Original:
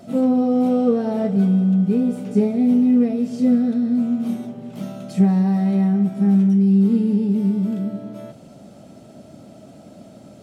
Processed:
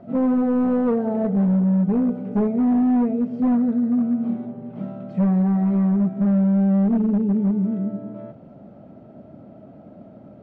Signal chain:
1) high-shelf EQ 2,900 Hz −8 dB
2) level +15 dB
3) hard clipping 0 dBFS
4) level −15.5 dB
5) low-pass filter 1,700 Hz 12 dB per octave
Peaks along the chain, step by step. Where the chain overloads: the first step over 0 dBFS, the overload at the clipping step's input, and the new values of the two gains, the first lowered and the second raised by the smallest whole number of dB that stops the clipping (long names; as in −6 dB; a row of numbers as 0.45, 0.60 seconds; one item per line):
−6.0, +9.0, 0.0, −15.5, −15.0 dBFS
step 2, 9.0 dB
step 2 +6 dB, step 4 −6.5 dB